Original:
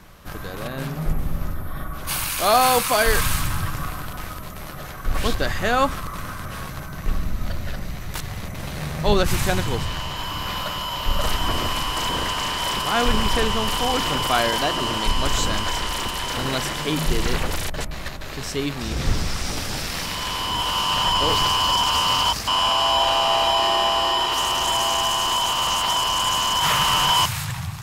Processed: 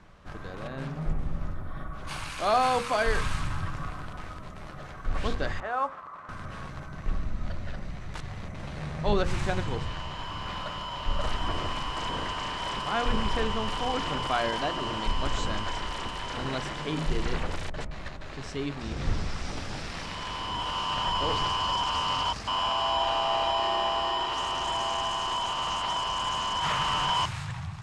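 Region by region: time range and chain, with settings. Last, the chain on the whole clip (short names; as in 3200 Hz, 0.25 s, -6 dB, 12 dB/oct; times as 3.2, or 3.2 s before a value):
5.6–6.29 band-pass 970 Hz, Q 1.4 + modulation noise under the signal 26 dB
whole clip: LPF 8900 Hz 24 dB/oct; high shelf 4000 Hz -11.5 dB; notches 60/120/180/240/300/360/420/480/540 Hz; gain -6 dB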